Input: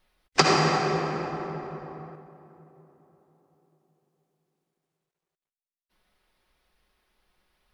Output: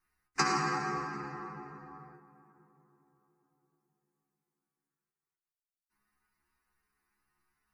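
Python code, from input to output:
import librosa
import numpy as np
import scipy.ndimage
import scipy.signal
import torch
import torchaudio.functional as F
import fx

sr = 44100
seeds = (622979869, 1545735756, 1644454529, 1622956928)

y = fx.low_shelf(x, sr, hz=120.0, db=-8.5)
y = fx.fixed_phaser(y, sr, hz=1400.0, stages=4)
y = fx.stiff_resonator(y, sr, f0_hz=69.0, decay_s=0.38, stiffness=0.002)
y = F.gain(torch.from_numpy(y), 4.5).numpy()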